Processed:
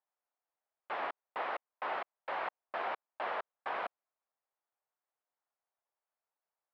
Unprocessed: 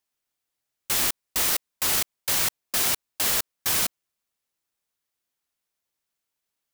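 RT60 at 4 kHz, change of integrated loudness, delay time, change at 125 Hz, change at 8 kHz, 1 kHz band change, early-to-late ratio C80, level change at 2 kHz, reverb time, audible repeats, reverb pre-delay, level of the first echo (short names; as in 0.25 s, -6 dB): none, -16.5 dB, none, under -25 dB, under -40 dB, -0.5 dB, none, -9.0 dB, none, none, none, none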